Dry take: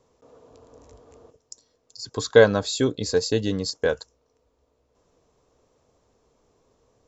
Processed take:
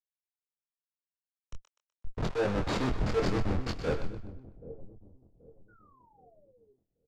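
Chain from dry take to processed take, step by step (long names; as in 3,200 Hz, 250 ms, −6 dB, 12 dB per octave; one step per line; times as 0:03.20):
reversed playback
upward compression, threshold −29 dBFS
reversed playback
comparator with hysteresis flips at −24.5 dBFS
leveller curve on the samples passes 3
high-shelf EQ 2,200 Hz −8 dB
on a send: echo with a time of its own for lows and highs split 630 Hz, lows 779 ms, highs 125 ms, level −7.5 dB
on the sum: sound drawn into the spectrogram fall, 0:05.68–0:06.74, 390–1,500 Hz −42 dBFS
low-pass filter 5,800 Hz 12 dB per octave
double-tracking delay 24 ms −5.5 dB
multiband upward and downward expander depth 100%
level −7.5 dB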